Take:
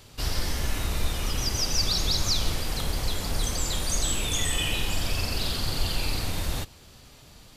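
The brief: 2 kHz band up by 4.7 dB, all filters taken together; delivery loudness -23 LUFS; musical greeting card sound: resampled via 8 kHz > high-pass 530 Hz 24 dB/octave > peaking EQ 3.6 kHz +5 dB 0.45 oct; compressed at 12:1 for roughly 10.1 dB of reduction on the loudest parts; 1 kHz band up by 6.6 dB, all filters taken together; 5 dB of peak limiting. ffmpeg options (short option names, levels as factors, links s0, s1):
-af "equalizer=f=1000:t=o:g=7.5,equalizer=f=2000:t=o:g=3.5,acompressor=threshold=0.0316:ratio=12,alimiter=level_in=1.26:limit=0.0631:level=0:latency=1,volume=0.794,aresample=8000,aresample=44100,highpass=f=530:w=0.5412,highpass=f=530:w=1.3066,equalizer=f=3600:t=o:w=0.45:g=5,volume=6.31"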